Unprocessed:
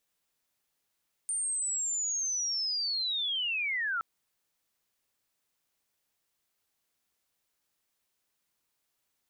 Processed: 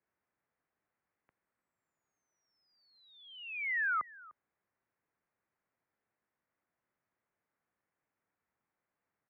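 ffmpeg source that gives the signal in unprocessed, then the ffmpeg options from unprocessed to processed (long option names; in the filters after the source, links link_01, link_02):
-f lavfi -i "aevalsrc='pow(10,(-29+0.5*t/2.72)/20)*sin(2*PI*(9000*t-7700*t*t/(2*2.72)))':duration=2.72:sample_rate=44100"
-af "lowshelf=frequency=130:gain=7,aecho=1:1:300:0.0841,highpass=frequency=200:width_type=q:width=0.5412,highpass=frequency=200:width_type=q:width=1.307,lowpass=frequency=2200:width_type=q:width=0.5176,lowpass=frequency=2200:width_type=q:width=0.7071,lowpass=frequency=2200:width_type=q:width=1.932,afreqshift=-110"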